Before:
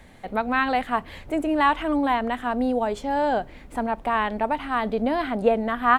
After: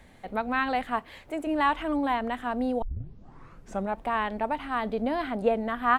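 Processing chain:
0:00.99–0:01.47: low-shelf EQ 250 Hz −10 dB
0:02.82: tape start 1.16 s
level −4.5 dB

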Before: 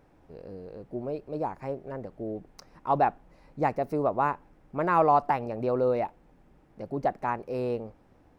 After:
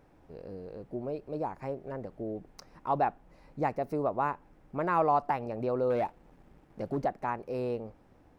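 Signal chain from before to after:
in parallel at −2.5 dB: downward compressor, threshold −34 dBFS, peak gain reduction 16 dB
0:05.90–0:07.05: on the sum: leveller curve on the samples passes 1
level −5.5 dB

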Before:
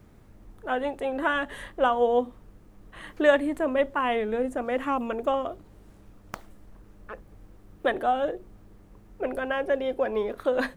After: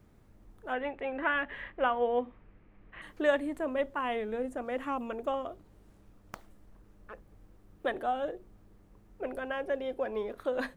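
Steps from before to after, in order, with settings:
0:00.73–0:03.02: low-pass with resonance 2,300 Hz, resonance Q 2.7
level −7 dB

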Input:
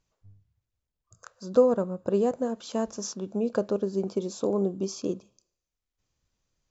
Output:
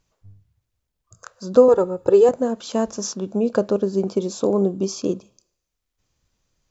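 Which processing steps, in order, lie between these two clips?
0:01.68–0:02.29: comb filter 2.3 ms, depth 96%
level +7 dB

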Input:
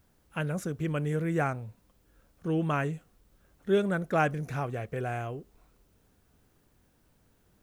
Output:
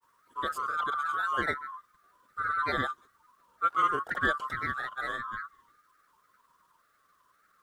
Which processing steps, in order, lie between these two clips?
neighbouring bands swapped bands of 1,000 Hz
granular cloud, grains 20 per second, pitch spread up and down by 3 semitones

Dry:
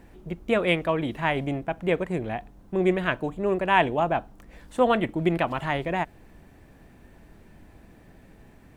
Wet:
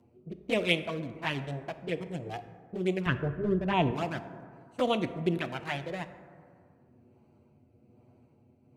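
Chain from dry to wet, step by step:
adaptive Wiener filter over 25 samples
high-pass filter 78 Hz 24 dB per octave
flanger swept by the level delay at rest 9 ms, full sweep at −18 dBFS
0:03.06–0:03.91: RIAA equalisation playback
rotating-speaker cabinet horn 1.2 Hz
high-shelf EQ 2,500 Hz +11 dB
dense smooth reverb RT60 2.1 s, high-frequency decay 0.35×, DRR 10.5 dB
level −3 dB

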